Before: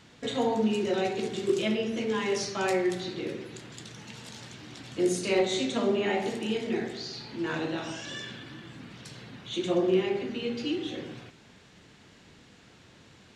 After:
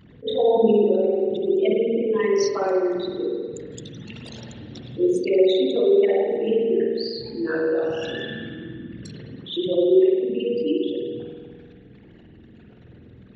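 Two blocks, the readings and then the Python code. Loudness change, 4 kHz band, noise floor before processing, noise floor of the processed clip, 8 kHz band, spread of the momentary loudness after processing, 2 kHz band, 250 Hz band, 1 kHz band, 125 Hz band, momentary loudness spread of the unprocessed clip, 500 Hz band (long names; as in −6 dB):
+8.0 dB, +1.5 dB, −56 dBFS, −48 dBFS, can't be measured, 20 LU, 0.0 dB, +6.0 dB, +2.0 dB, +2.5 dB, 18 LU, +10.0 dB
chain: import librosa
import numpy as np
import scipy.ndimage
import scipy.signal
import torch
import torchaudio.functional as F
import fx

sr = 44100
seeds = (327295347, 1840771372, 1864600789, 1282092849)

y = fx.envelope_sharpen(x, sr, power=3.0)
y = fx.rev_spring(y, sr, rt60_s=1.6, pass_ms=(48,), chirp_ms=60, drr_db=0.0)
y = fx.attack_slew(y, sr, db_per_s=350.0)
y = y * 10.0 ** (5.0 / 20.0)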